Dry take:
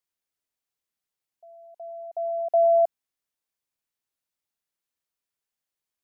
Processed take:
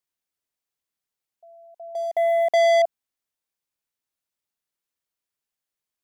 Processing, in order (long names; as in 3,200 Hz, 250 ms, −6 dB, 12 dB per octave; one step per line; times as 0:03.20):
0:01.95–0:02.82: leveller curve on the samples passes 3